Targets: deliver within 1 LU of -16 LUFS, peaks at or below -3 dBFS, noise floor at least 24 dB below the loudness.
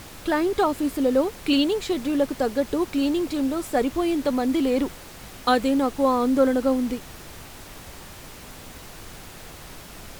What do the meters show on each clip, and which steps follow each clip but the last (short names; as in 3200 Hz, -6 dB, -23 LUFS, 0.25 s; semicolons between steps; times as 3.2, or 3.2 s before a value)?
noise floor -42 dBFS; noise floor target -48 dBFS; loudness -23.5 LUFS; peak -7.0 dBFS; loudness target -16.0 LUFS
-> noise print and reduce 6 dB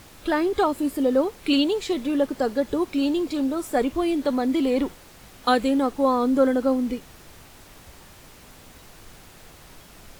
noise floor -48 dBFS; loudness -23.5 LUFS; peak -7.0 dBFS; loudness target -16.0 LUFS
-> gain +7.5 dB; limiter -3 dBFS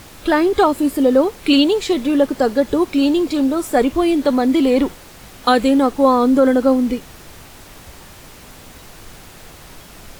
loudness -16.0 LUFS; peak -3.0 dBFS; noise floor -41 dBFS